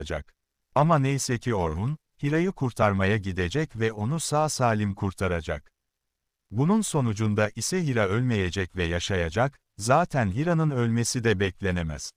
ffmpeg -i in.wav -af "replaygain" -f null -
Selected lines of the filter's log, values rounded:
track_gain = +6.8 dB
track_peak = 0.279